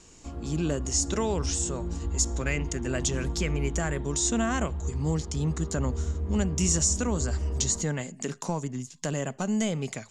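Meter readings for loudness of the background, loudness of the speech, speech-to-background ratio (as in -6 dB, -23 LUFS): -34.0 LUFS, -29.5 LUFS, 4.5 dB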